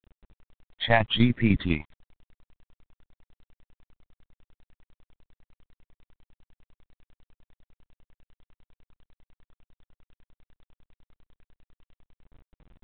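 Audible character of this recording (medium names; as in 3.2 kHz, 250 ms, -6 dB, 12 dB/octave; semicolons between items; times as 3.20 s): tremolo saw down 10 Hz, depth 65%; phasing stages 8, 0.89 Hz, lowest notch 360–1000 Hz; a quantiser's noise floor 10-bit, dither none; G.726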